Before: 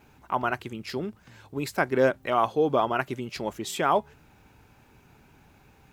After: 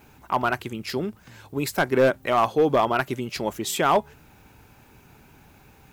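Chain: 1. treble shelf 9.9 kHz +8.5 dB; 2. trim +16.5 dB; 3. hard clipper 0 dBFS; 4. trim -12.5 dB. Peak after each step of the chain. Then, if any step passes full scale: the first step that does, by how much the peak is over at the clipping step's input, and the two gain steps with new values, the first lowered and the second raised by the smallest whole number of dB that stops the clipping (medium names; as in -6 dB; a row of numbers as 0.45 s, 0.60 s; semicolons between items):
-8.0 dBFS, +8.5 dBFS, 0.0 dBFS, -12.5 dBFS; step 2, 8.5 dB; step 2 +7.5 dB, step 4 -3.5 dB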